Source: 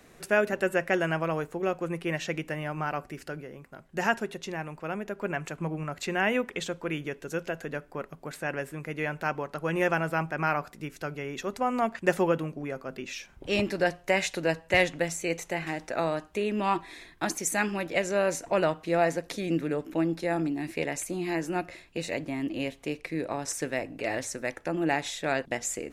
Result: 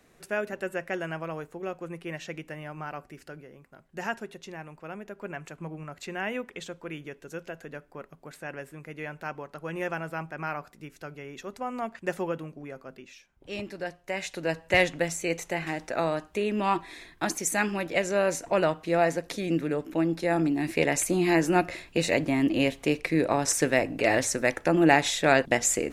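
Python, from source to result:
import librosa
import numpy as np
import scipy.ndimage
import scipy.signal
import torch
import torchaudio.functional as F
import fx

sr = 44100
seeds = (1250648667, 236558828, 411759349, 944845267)

y = fx.gain(x, sr, db=fx.line((12.88, -6.0), (13.33, -17.0), (13.48, -9.0), (14.02, -9.0), (14.68, 1.0), (20.02, 1.0), (21.03, 7.5)))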